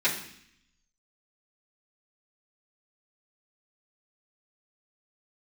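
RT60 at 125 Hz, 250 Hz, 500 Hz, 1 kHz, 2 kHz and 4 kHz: 1.0, 0.95, 0.65, 0.65, 0.80, 0.80 s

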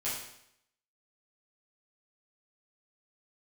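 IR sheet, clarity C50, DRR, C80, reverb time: 2.5 dB, -10.0 dB, 6.0 dB, 0.75 s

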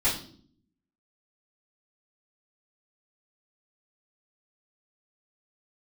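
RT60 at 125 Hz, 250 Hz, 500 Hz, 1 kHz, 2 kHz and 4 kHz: 0.95, 0.90, 0.65, 0.45, 0.40, 0.50 s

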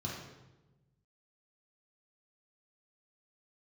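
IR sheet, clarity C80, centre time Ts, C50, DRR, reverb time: 4.0 dB, 63 ms, 1.0 dB, -4.5 dB, 1.1 s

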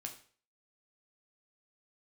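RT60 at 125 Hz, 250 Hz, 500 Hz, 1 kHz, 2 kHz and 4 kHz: 0.50, 0.40, 0.45, 0.45, 0.45, 0.45 s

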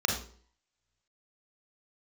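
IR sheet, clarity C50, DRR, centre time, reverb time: 4.0 dB, 0.0 dB, 33 ms, 0.50 s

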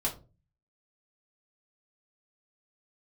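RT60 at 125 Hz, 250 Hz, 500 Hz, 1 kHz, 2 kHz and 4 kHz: 0.65, 0.50, 0.40, 0.25, 0.20, 0.20 s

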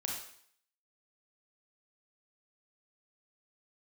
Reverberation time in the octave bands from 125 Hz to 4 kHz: 0.55, 0.60, 0.60, 0.60, 0.65, 0.60 s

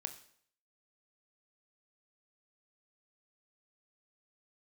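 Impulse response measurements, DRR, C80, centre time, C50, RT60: 8.0 dB, 15.5 dB, 9 ms, 13.0 dB, 0.60 s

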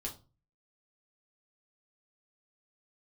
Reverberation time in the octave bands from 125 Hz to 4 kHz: 0.55, 0.40, 0.35, 0.30, 0.20, 0.25 s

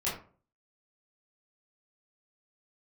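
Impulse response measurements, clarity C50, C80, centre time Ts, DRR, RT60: 6.0 dB, 11.0 dB, 36 ms, -9.5 dB, 0.40 s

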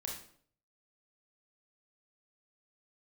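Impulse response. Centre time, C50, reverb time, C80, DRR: 36 ms, 4.0 dB, 0.60 s, 8.5 dB, -1.5 dB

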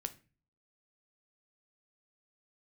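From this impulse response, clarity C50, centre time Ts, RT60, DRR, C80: 17.0 dB, 4 ms, 0.35 s, 9.0 dB, 22.5 dB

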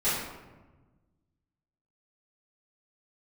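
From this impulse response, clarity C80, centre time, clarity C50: 3.0 dB, 75 ms, 0.0 dB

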